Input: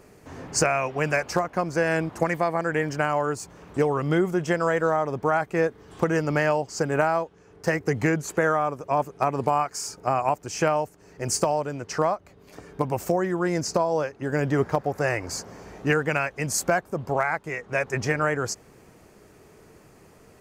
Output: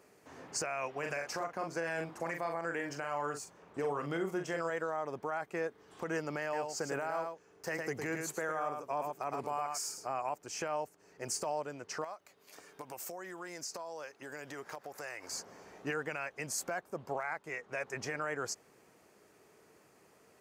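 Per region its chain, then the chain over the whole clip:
0.98–4.7 doubler 42 ms -7 dB + mismatched tape noise reduction decoder only
6.42–10.07 high shelf 11000 Hz +7.5 dB + echo 0.108 s -7.5 dB
12.04–15.31 tilt +2.5 dB/oct + compressor 4:1, threshold -31 dBFS
whole clip: HPF 400 Hz 6 dB/oct; limiter -18 dBFS; gain -8 dB

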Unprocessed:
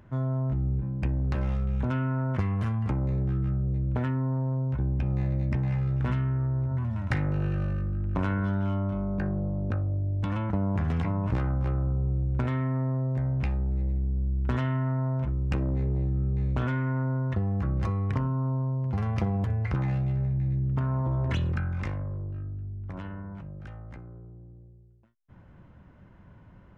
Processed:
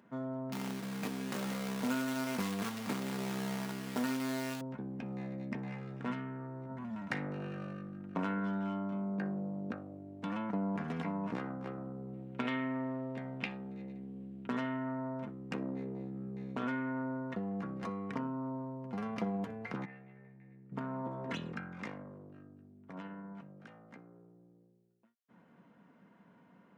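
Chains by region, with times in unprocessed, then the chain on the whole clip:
0.52–4.61 companded quantiser 4-bit + doubler 20 ms -10.5 dB
12.13–14.47 HPF 56 Hz + bell 3000 Hz +11.5 dB 1.2 oct
19.85–20.72 synth low-pass 2100 Hz, resonance Q 2.5 + resonator 450 Hz, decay 0.32 s, mix 80%
whole clip: HPF 180 Hz 24 dB/oct; comb 4.3 ms, depth 39%; gain -5 dB

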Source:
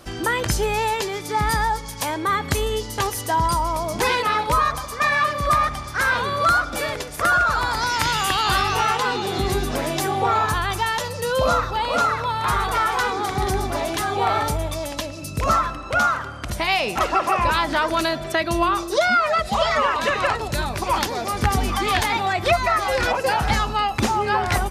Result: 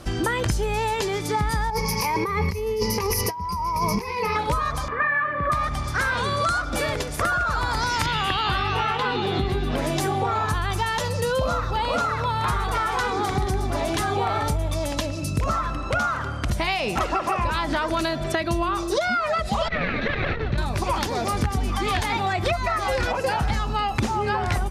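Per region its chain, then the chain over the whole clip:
1.7–4.36 ripple EQ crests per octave 0.84, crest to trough 17 dB + negative-ratio compressor -25 dBFS
4.88–5.52 upward compressor, threshold -23 dBFS + speaker cabinet 110–2200 Hz, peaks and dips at 120 Hz -9 dB, 210 Hz -8 dB, 710 Hz -7 dB, 1700 Hz +7 dB
6.17–6.62 LPF 9500 Hz 24 dB/oct + high shelf 5300 Hz +11.5 dB
8.06–9.78 HPF 43 Hz + resonant high shelf 4700 Hz -10 dB, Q 1.5
19.68–20.58 minimum comb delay 0.49 ms + LPF 3600 Hz 24 dB/oct + core saturation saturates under 190 Hz
whole clip: LPF 12000 Hz 12 dB/oct; low shelf 250 Hz +7.5 dB; compressor, threshold -22 dBFS; gain +1.5 dB

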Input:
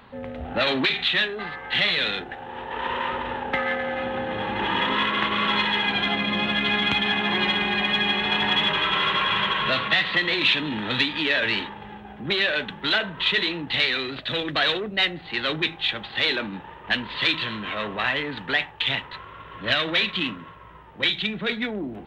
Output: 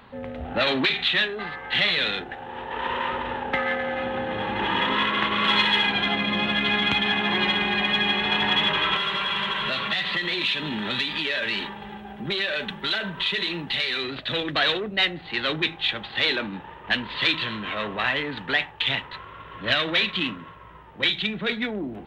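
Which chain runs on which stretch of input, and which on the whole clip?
5.44–5.87 HPF 41 Hz + high shelf 3500 Hz +8.5 dB
8.96–14.04 comb 5.1 ms, depth 41% + compressor 3:1, threshold -25 dBFS + high shelf 5200 Hz +9 dB
whole clip: dry

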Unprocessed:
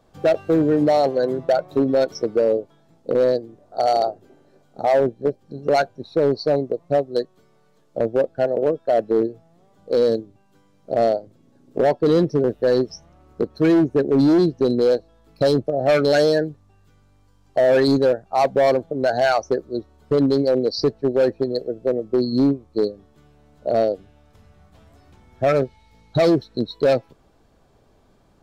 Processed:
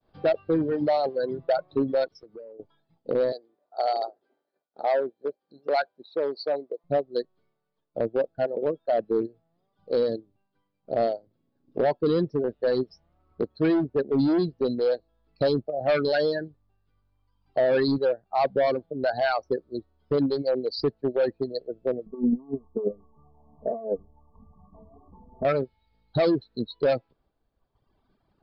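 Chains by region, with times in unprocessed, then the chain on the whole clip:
2.08–2.6 compressor 16:1, threshold -30 dBFS + three-band expander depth 100%
3.32–6.84 HPF 440 Hz + notch 2800 Hz, Q 14
22.06–25.45 brick-wall FIR low-pass 1200 Hz + negative-ratio compressor -23 dBFS, ratio -0.5 + comb 4.5 ms, depth 98%
whole clip: Chebyshev low-pass 4900 Hz, order 6; expander -54 dBFS; reverb removal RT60 1.3 s; gain -4.5 dB

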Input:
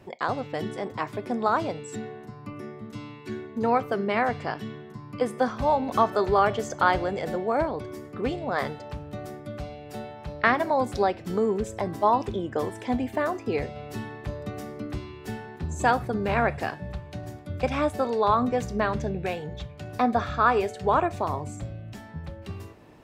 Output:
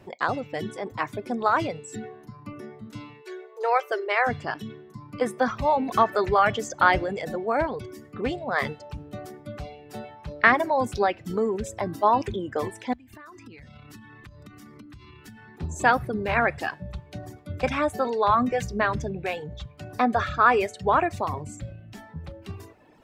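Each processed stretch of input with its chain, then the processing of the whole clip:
3.22–4.27 dynamic EQ 5600 Hz, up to +5 dB, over -49 dBFS, Q 1.5 + brick-wall FIR high-pass 340 Hz
12.93–15.58 band shelf 560 Hz -13 dB 1.3 oct + compressor 16:1, threshold -40 dBFS
whole clip: reverb removal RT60 1 s; dynamic EQ 1900 Hz, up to +6 dB, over -39 dBFS, Q 1.1; transient shaper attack 0 dB, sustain +4 dB

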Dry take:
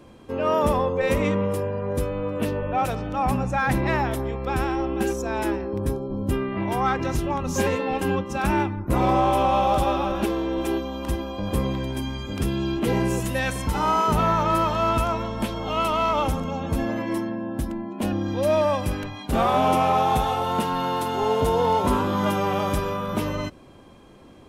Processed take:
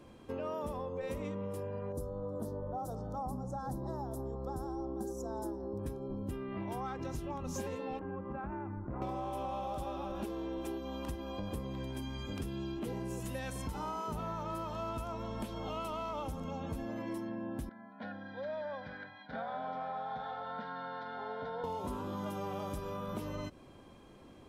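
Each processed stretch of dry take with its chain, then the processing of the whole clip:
1.92–5.79 Butterworth band-stop 2400 Hz, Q 0.56 + notches 60/120/180/240/300/360/420/480/540 Hz
7.99–9.02 LPF 1700 Hz 24 dB/oct + compressor 4:1, threshold -28 dBFS
17.69–21.64 speaker cabinet 300–3200 Hz, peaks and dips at 340 Hz -4 dB, 610 Hz -7 dB, 870 Hz -9 dB, 1400 Hz +9 dB, 2100 Hz -5 dB, 3100 Hz -5 dB + fixed phaser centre 1800 Hz, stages 8
whole clip: dynamic EQ 2100 Hz, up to -6 dB, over -38 dBFS, Q 0.89; compressor, threshold -29 dBFS; gain -7 dB

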